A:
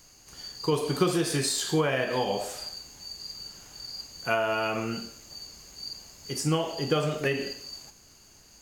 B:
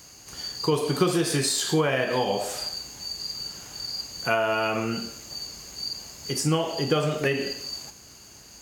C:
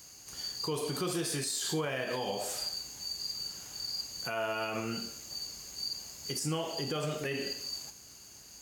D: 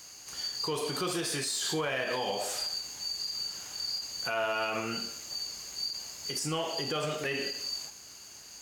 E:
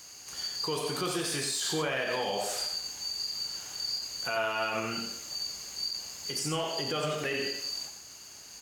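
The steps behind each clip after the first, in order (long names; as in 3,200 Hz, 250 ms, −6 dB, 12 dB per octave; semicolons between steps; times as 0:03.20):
high-pass filter 52 Hz; in parallel at +2 dB: downward compressor, threshold −35 dBFS, peak gain reduction 15.5 dB
high-shelf EQ 4,300 Hz +7 dB; brickwall limiter −16.5 dBFS, peak gain reduction 9 dB; level −8 dB
mid-hump overdrive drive 7 dB, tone 5,600 Hz, clips at −24 dBFS; every ending faded ahead of time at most 110 dB per second; level +2.5 dB
single-tap delay 90 ms −7 dB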